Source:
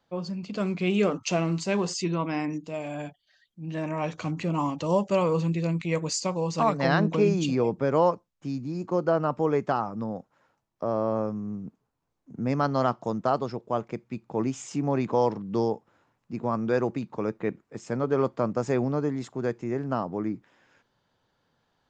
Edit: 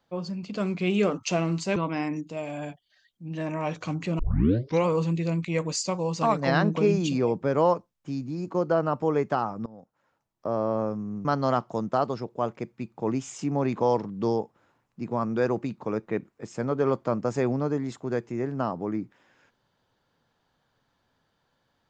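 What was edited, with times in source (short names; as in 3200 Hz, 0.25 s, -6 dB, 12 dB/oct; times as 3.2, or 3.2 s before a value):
1.76–2.13 cut
4.56 tape start 0.67 s
10.03–10.86 fade in, from -19 dB
11.62–12.57 cut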